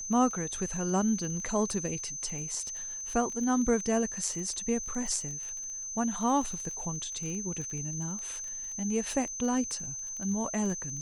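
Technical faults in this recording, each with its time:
crackle 22/s -36 dBFS
tone 6200 Hz -36 dBFS

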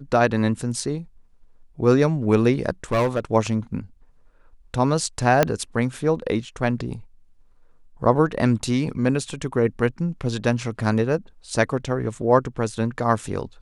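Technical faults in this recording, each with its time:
2.92–3.2 clipped -16 dBFS
5.43 pop -3 dBFS

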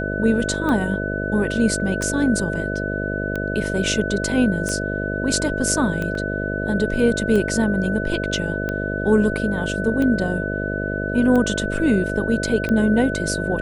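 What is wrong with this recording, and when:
buzz 50 Hz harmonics 13 -26 dBFS
tick 45 rpm -13 dBFS
tone 1500 Hz -27 dBFS
6.15 gap 2.5 ms

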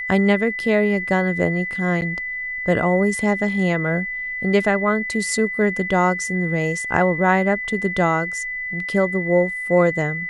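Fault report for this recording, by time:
tone 2000 Hz -25 dBFS
2.01–2.02 gap 9.3 ms

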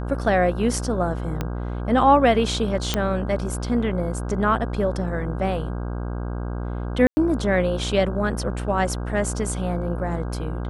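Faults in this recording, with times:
buzz 60 Hz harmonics 27 -28 dBFS
1.41 pop -12 dBFS
2.94 pop -6 dBFS
7.07–7.17 gap 0.1 s

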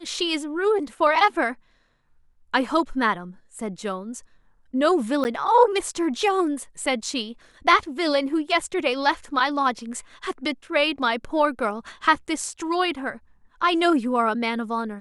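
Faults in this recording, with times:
5.24–5.25 gap 9.7 ms

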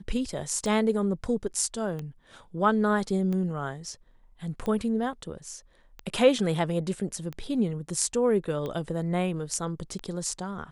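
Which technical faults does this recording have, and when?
tick 45 rpm -22 dBFS

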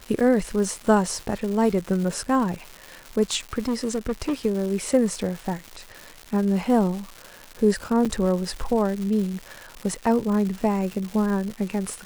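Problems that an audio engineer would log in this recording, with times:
crackle 330/s -30 dBFS
3.59–4.34 clipped -20 dBFS
8.05–8.06 gap 6.5 ms

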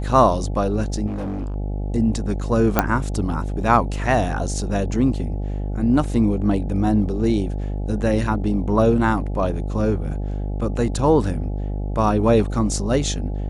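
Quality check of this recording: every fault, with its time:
buzz 50 Hz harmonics 17 -25 dBFS
1.06–1.56 clipped -24 dBFS
2.79 pop -2 dBFS

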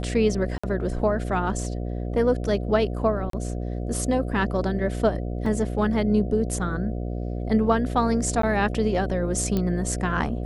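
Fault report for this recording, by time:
buzz 60 Hz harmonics 12 -29 dBFS
0.58–0.64 gap 55 ms
3.3–3.33 gap 33 ms
5.46 gap 3.4 ms
8.42–8.43 gap 13 ms
9.57 pop -13 dBFS

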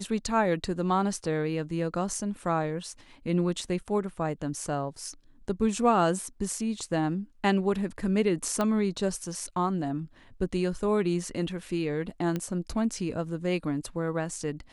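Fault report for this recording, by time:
8.61 pop -15 dBFS
12.36 pop -18 dBFS

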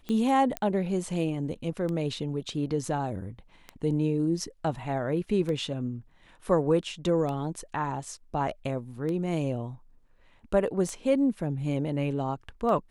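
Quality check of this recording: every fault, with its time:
tick 33 1/3 rpm -22 dBFS
0.57 pop -14 dBFS

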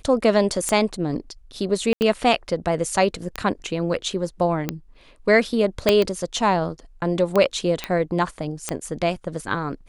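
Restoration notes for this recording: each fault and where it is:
tick 45 rpm -9 dBFS
1.93–2.01 gap 79 ms
5.89 pop -2 dBFS
7.84 pop -10 dBFS

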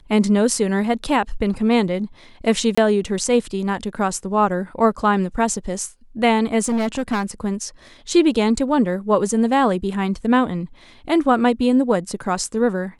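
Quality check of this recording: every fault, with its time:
2.75–2.77 gap 25 ms
6.63–7.3 clipped -17 dBFS

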